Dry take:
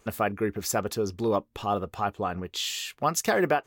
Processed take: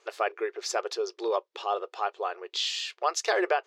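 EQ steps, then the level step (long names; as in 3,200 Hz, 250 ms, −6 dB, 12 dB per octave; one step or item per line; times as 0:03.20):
linear-phase brick-wall high-pass 340 Hz
low-pass with resonance 4,900 Hz, resonance Q 1.6
−1.5 dB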